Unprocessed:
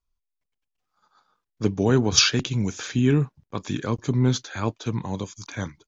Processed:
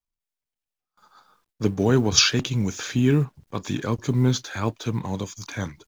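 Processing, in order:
mu-law and A-law mismatch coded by mu
noise gate with hold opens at −54 dBFS

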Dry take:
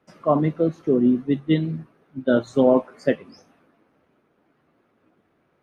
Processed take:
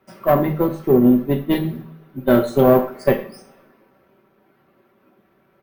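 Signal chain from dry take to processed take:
one-sided soft clipper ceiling −17 dBFS
bad sample-rate conversion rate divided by 3×, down filtered, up hold
comb filter 5.2 ms, depth 46%
coupled-rooms reverb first 0.44 s, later 1.9 s, from −26 dB, DRR 5 dB
level +4.5 dB

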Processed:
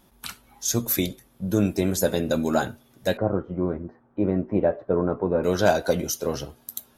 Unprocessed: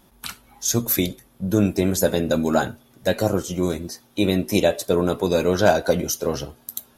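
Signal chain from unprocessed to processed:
0:03.17–0:05.44: low-pass filter 1,500 Hz 24 dB per octave
level −3 dB

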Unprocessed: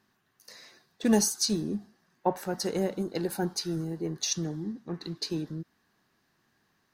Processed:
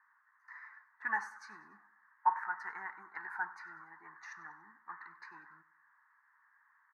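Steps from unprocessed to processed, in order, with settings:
elliptic band-pass filter 930–1,900 Hz, stop band 40 dB
on a send: repeating echo 96 ms, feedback 41%, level −18 dB
on the sum: level +7 dB

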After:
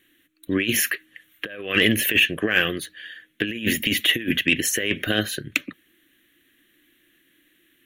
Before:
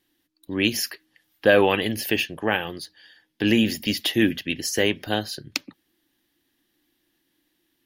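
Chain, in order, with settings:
compressor whose output falls as the input rises −25 dBFS, ratio −0.5
phaser with its sweep stopped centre 2,100 Hz, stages 4
mid-hump overdrive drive 8 dB, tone 6,100 Hz, clips at −8.5 dBFS
level +6.5 dB

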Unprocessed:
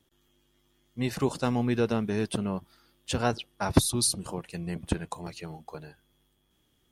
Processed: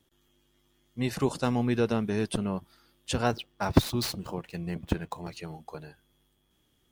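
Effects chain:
0:03.26–0:05.37: running median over 5 samples
in parallel at −10 dB: comparator with hysteresis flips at −16.5 dBFS

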